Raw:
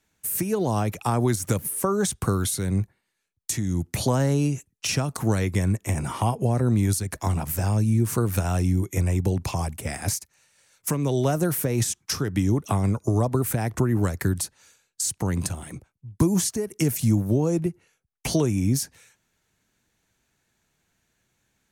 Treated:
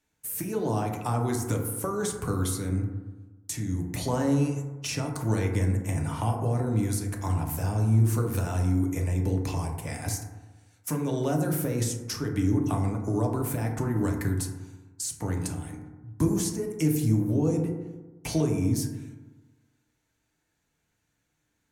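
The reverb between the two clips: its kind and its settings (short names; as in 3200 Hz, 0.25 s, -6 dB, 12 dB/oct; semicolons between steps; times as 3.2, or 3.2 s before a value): FDN reverb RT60 1.2 s, low-frequency decay 1.1×, high-frequency decay 0.3×, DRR 1 dB; gain -7 dB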